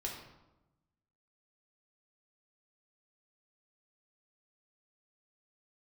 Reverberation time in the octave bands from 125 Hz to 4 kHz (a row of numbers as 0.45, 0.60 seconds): 1.4, 1.3, 1.0, 0.95, 0.75, 0.65 seconds